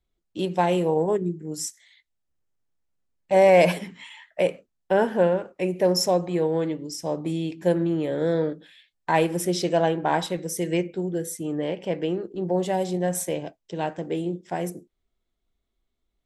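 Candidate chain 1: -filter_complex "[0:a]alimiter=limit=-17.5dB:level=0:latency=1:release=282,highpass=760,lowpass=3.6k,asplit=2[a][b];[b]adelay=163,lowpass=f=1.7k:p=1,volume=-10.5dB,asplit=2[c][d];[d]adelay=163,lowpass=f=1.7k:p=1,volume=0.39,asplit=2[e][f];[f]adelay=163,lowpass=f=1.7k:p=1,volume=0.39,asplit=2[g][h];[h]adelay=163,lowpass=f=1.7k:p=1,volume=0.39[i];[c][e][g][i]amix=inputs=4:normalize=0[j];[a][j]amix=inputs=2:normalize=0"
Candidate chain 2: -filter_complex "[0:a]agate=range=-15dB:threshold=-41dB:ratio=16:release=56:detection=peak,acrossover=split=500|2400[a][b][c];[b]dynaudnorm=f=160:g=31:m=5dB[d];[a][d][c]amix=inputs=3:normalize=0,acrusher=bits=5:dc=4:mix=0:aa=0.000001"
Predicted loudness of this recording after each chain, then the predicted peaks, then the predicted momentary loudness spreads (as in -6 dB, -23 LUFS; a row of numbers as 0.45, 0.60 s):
-37.0, -22.0 LUFS; -18.5, -3.5 dBFS; 10, 13 LU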